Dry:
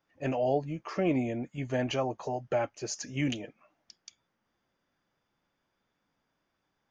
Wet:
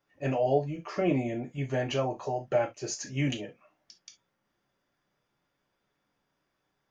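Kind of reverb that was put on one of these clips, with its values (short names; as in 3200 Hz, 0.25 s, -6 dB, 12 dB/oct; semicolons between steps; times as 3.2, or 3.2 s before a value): non-linear reverb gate 90 ms falling, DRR 2.5 dB; gain -1 dB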